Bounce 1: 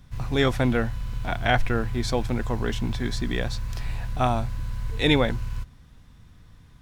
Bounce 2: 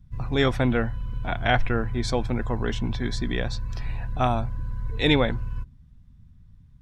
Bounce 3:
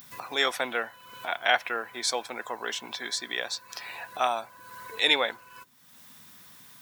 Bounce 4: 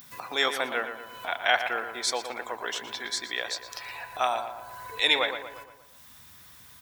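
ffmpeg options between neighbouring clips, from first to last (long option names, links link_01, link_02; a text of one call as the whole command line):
ffmpeg -i in.wav -af "afftdn=noise_reduction=17:noise_floor=-46" out.wav
ffmpeg -i in.wav -af "highpass=560,aemphasis=mode=production:type=bsi,acompressor=mode=upward:threshold=-32dB:ratio=2.5" out.wav
ffmpeg -i in.wav -filter_complex "[0:a]asubboost=boost=10.5:cutoff=60,asplit=2[link_01][link_02];[link_02]adelay=117,lowpass=frequency=2500:poles=1,volume=-8dB,asplit=2[link_03][link_04];[link_04]adelay=117,lowpass=frequency=2500:poles=1,volume=0.53,asplit=2[link_05][link_06];[link_06]adelay=117,lowpass=frequency=2500:poles=1,volume=0.53,asplit=2[link_07][link_08];[link_08]adelay=117,lowpass=frequency=2500:poles=1,volume=0.53,asplit=2[link_09][link_10];[link_10]adelay=117,lowpass=frequency=2500:poles=1,volume=0.53,asplit=2[link_11][link_12];[link_12]adelay=117,lowpass=frequency=2500:poles=1,volume=0.53[link_13];[link_03][link_05][link_07][link_09][link_11][link_13]amix=inputs=6:normalize=0[link_14];[link_01][link_14]amix=inputs=2:normalize=0" out.wav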